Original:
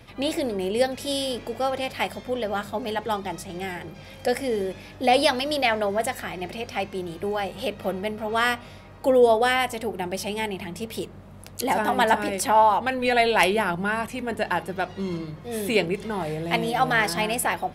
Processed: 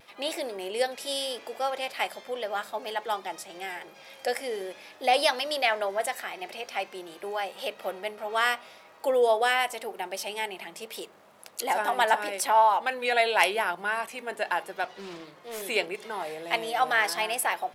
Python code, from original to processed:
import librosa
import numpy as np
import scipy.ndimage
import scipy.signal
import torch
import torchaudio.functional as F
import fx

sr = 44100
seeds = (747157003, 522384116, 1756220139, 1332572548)

y = scipy.signal.sosfilt(scipy.signal.butter(2, 540.0, 'highpass', fs=sr, output='sos'), x)
y = fx.dmg_crackle(y, sr, seeds[0], per_s=570.0, level_db=-54.0)
y = fx.vibrato(y, sr, rate_hz=0.82, depth_cents=24.0)
y = fx.doppler_dist(y, sr, depth_ms=0.28, at=(14.84, 15.62))
y = F.gain(torch.from_numpy(y), -2.0).numpy()